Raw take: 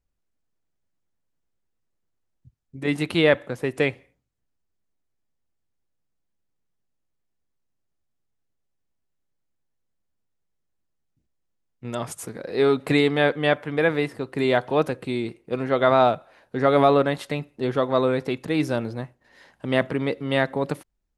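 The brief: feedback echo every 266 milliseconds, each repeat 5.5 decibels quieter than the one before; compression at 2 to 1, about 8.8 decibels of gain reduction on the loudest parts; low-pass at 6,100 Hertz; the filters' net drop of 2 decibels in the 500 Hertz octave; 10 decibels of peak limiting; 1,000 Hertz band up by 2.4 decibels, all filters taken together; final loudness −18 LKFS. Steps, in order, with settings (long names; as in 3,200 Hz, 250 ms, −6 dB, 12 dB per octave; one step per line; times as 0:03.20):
low-pass filter 6,100 Hz
parametric band 500 Hz −4 dB
parametric band 1,000 Hz +5 dB
downward compressor 2 to 1, threshold −28 dBFS
brickwall limiter −21 dBFS
repeating echo 266 ms, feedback 53%, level −5.5 dB
level +15 dB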